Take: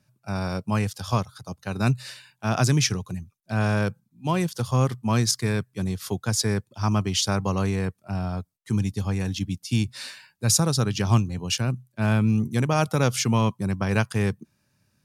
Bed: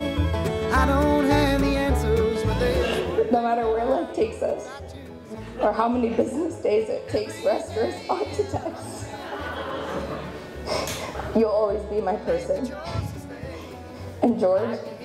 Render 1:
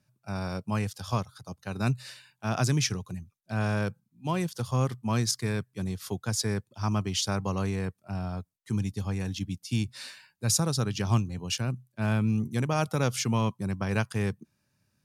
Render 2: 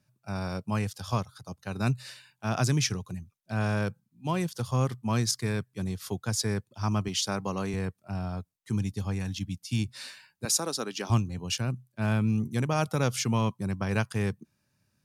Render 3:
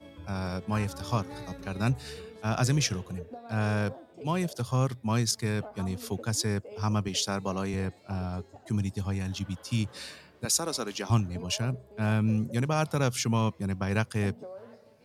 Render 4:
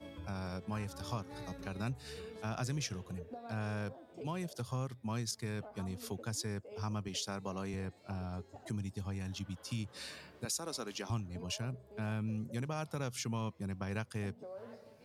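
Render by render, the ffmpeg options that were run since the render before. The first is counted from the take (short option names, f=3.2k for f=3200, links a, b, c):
-af "volume=-5dB"
-filter_complex "[0:a]asettb=1/sr,asplit=3[a][b][c];[a]atrim=end=7.084[d];[b]atrim=start=7.08:end=7.74,asetpts=PTS-STARTPTS,afade=t=in:d=0.004:c=qsin,afade=t=out:st=0.656:d=0.004:c=qsin,highpass=150[e];[c]atrim=start=7.736[f];[d][e]acrossfade=d=0.004:c1=hsin:c2=qsin[g];[g][f]acrossfade=d=0.004:c1=qsin:c2=hsin,asettb=1/sr,asplit=3[h][i][j];[h]atrim=end=9.194[k];[i]atrim=start=9.19:end=9.79,asetpts=PTS-STARTPTS,afade=t=in:d=0.004:c=qsin,afade=t=out:st=0.596:d=0.004:c=qsin,equalizer=f=410:t=o:w=0.8:g=-7.5[l];[j]atrim=start=9.786[m];[k][l]acrossfade=d=0.004:c1=hsin:c2=qsin[n];[n][m]acrossfade=d=0.004:c1=qsin:c2=hsin,asettb=1/sr,asplit=3[o][p][q];[o]atrim=end=10.454[r];[p]atrim=start=10.45:end=11.1,asetpts=PTS-STARTPTS,afade=t=in:d=0.004:c=qsin,afade=t=out:st=0.646:d=0.004:c=qsin,highpass=f=250:w=0.5412,highpass=f=250:w=1.3066[s];[q]atrim=start=11.096[t];[r][s]acrossfade=d=0.004:c1=hsin:c2=qsin[u];[u][t]acrossfade=d=0.004:c1=qsin:c2=hsin"
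-filter_complex "[1:a]volume=-23dB[a];[0:a][a]amix=inputs=2:normalize=0"
-af "acompressor=threshold=-44dB:ratio=2"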